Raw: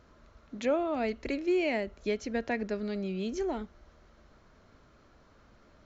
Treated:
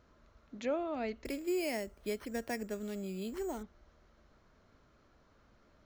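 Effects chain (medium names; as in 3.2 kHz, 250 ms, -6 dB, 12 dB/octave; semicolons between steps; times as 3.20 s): 1.25–3.63 s: careless resampling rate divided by 6×, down none, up hold; trim -6 dB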